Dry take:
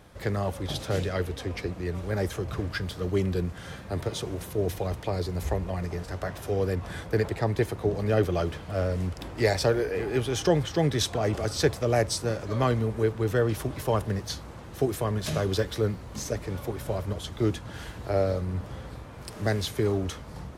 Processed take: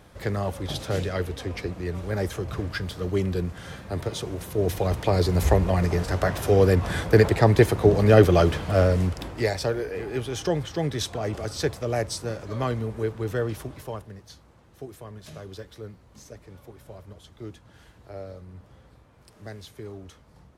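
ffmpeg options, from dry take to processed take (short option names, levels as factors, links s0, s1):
-af "volume=2.82,afade=t=in:st=4.44:d=0.91:silence=0.398107,afade=t=out:st=8.71:d=0.8:silence=0.266073,afade=t=out:st=13.43:d=0.66:silence=0.281838"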